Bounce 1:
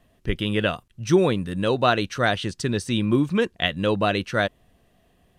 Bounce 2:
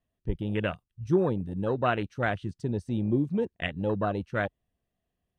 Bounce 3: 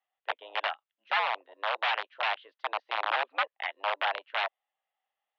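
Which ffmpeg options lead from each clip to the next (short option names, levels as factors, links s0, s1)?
-af "afwtdn=0.0631,equalizer=f=64:w=0.55:g=4,volume=0.473"
-af "aeval=exprs='(mod(11.2*val(0)+1,2)-1)/11.2':c=same,highpass=f=590:t=q:w=0.5412,highpass=f=590:t=q:w=1.307,lowpass=f=3400:t=q:w=0.5176,lowpass=f=3400:t=q:w=0.7071,lowpass=f=3400:t=q:w=1.932,afreqshift=99,volume=1.33"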